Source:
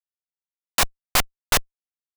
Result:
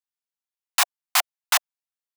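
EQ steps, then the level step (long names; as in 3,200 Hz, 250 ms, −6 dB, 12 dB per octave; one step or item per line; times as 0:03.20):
Butterworth high-pass 680 Hz 72 dB per octave
0.0 dB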